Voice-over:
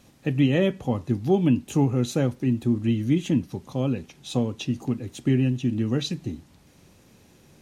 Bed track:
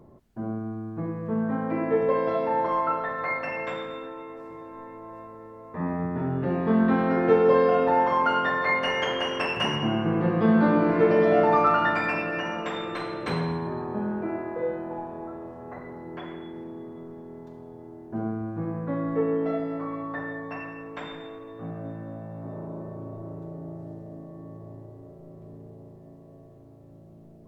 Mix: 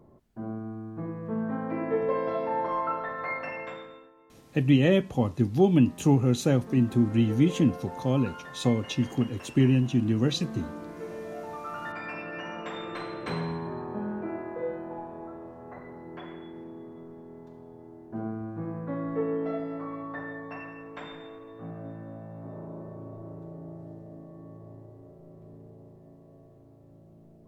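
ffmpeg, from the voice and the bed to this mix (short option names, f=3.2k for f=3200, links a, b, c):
-filter_complex "[0:a]adelay=4300,volume=0dB[a];[1:a]volume=11dB,afade=t=out:st=3.47:d=0.65:silence=0.177828,afade=t=in:st=11.61:d=1.36:silence=0.177828[b];[a][b]amix=inputs=2:normalize=0"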